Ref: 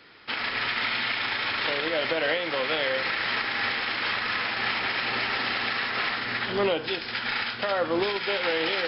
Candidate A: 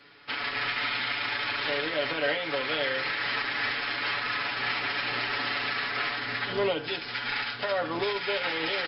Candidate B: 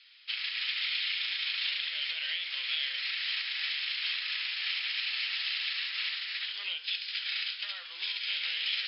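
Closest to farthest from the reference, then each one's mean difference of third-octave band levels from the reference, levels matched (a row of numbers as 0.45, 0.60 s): A, B; 1.0, 15.5 dB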